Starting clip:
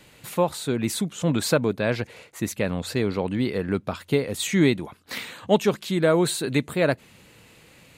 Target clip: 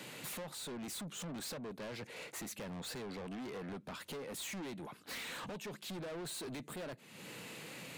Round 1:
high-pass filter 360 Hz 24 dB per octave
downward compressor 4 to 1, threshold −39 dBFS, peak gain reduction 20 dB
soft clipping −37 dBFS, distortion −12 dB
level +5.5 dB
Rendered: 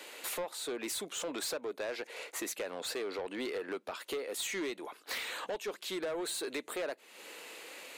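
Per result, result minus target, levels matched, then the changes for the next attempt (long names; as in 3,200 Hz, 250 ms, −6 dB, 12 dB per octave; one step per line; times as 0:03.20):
125 Hz band −18.0 dB; soft clipping: distortion −8 dB
change: high-pass filter 140 Hz 24 dB per octave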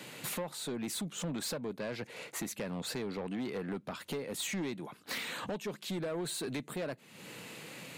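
soft clipping: distortion −7 dB
change: soft clipping −47 dBFS, distortion −4 dB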